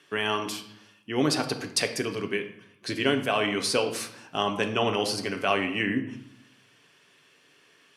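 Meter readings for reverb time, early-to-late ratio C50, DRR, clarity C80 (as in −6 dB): 0.75 s, 10.5 dB, 5.0 dB, 13.5 dB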